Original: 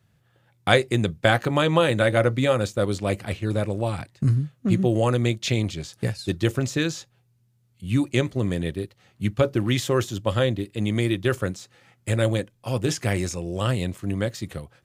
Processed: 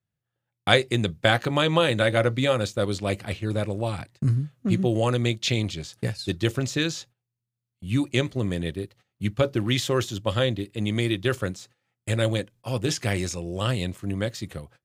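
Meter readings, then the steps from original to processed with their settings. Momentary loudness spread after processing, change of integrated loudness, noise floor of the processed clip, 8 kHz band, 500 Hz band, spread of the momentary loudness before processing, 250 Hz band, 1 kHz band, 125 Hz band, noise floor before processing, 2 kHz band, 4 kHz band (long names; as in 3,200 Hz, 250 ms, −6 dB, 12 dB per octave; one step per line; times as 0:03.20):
10 LU, −1.5 dB, −85 dBFS, −0.5 dB, −2.0 dB, 9 LU, −2.0 dB, −1.5 dB, −2.0 dB, −65 dBFS, −0.5 dB, +2.5 dB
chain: noise gate −48 dBFS, range −19 dB
dynamic equaliser 3,800 Hz, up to +5 dB, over −41 dBFS, Q 0.94
level −2 dB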